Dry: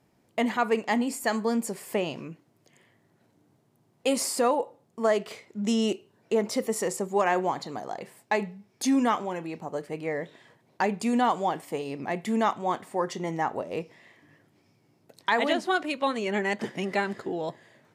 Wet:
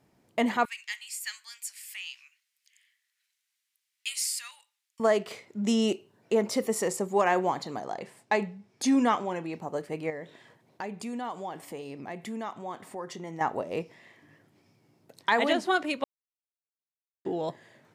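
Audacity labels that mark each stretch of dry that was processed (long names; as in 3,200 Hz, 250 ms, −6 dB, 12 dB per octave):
0.650000	5.000000	inverse Chebyshev high-pass filter stop band from 350 Hz, stop band 80 dB
7.790000	9.530000	low-pass filter 9,500 Hz
10.100000	13.410000	downward compressor 2 to 1, threshold −41 dBFS
16.040000	17.250000	silence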